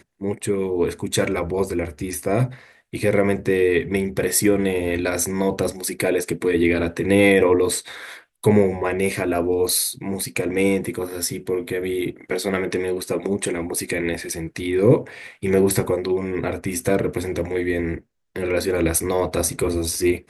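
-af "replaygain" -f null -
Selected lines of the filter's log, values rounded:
track_gain = +1.6 dB
track_peak = 0.537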